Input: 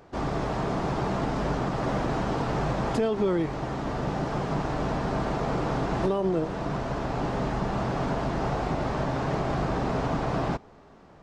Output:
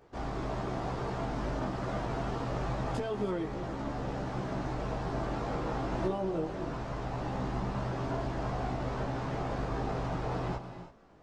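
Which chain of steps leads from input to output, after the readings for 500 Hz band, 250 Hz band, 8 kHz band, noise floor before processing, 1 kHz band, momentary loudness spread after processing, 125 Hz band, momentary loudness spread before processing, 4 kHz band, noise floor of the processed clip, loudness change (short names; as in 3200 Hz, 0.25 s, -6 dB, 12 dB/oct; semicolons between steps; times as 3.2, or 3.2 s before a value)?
-7.0 dB, -7.0 dB, -7.0 dB, -52 dBFS, -7.0 dB, 4 LU, -5.5 dB, 4 LU, -7.0 dB, -46 dBFS, -6.5 dB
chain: chorus voices 4, 0.23 Hz, delay 17 ms, depth 2.2 ms; non-linear reverb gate 0.35 s rising, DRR 9.5 dB; gain -4.5 dB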